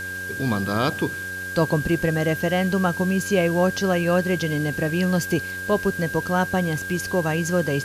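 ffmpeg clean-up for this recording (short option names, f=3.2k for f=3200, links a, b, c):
-af "adeclick=t=4,bandreject=f=92.7:t=h:w=4,bandreject=f=185.4:t=h:w=4,bandreject=f=278.1:t=h:w=4,bandreject=f=370.8:t=h:w=4,bandreject=f=463.5:t=h:w=4,bandreject=f=556.2:t=h:w=4,bandreject=f=1.6k:w=30,afwtdn=0.0079"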